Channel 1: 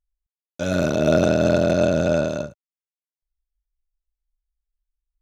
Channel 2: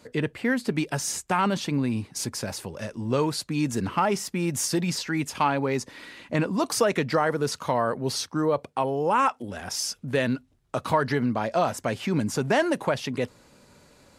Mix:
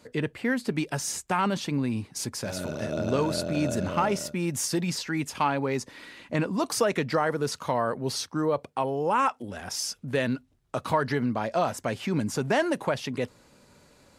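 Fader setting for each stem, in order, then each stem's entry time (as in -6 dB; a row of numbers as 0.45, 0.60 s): -13.5, -2.0 dB; 1.85, 0.00 s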